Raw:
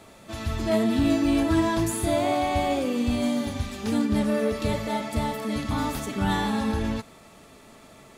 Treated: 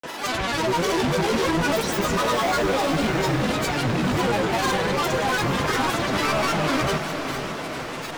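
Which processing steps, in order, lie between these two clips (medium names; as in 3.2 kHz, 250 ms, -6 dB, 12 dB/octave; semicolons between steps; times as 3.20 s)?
overdrive pedal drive 33 dB, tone 3.6 kHz, clips at -10.5 dBFS; granulator, pitch spread up and down by 12 st; echo that smears into a reverb 505 ms, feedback 58%, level -8 dB; trim -4.5 dB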